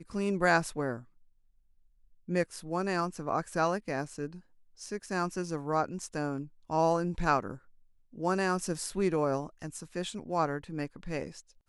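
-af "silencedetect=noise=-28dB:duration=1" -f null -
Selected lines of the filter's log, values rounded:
silence_start: 0.94
silence_end: 2.31 | silence_duration: 1.37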